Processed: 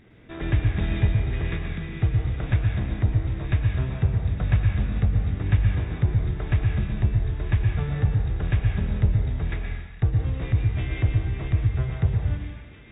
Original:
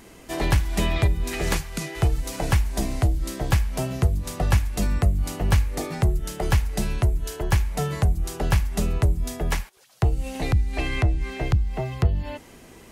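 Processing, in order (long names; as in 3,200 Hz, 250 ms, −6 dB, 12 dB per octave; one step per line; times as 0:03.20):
lower of the sound and its delayed copy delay 0.49 ms
linear-phase brick-wall low-pass 3,800 Hz
parametric band 110 Hz +8.5 dB 1.3 octaves
delay with a high-pass on its return 974 ms, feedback 74%, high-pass 1,800 Hz, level −12 dB
dense smooth reverb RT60 1.1 s, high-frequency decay 0.9×, pre-delay 100 ms, DRR 1 dB
level −7.5 dB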